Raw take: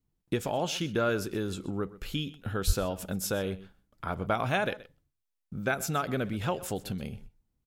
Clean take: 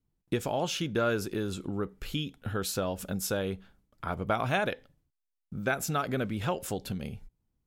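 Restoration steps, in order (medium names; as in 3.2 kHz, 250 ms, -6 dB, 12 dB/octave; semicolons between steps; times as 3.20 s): 2.66–2.78 s: high-pass 140 Hz 24 dB/octave; inverse comb 126 ms -18.5 dB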